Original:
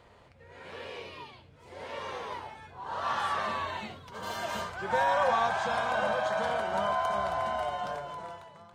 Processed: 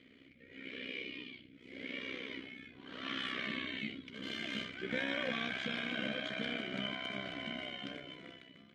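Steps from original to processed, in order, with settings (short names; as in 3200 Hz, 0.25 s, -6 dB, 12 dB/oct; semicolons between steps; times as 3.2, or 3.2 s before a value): vowel filter i; AM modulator 64 Hz, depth 55%; gain +16 dB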